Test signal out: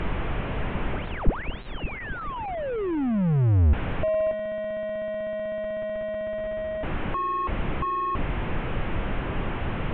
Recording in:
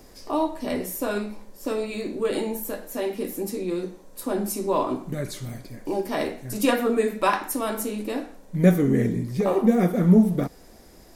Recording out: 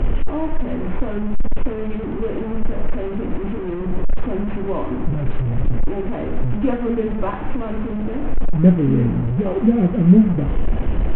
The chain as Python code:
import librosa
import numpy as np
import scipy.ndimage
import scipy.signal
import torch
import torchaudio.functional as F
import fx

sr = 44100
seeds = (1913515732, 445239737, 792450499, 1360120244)

y = fx.delta_mod(x, sr, bps=16000, step_db=-21.0)
y = fx.tilt_eq(y, sr, slope=-4.5)
y = F.gain(torch.from_numpy(y), -5.5).numpy()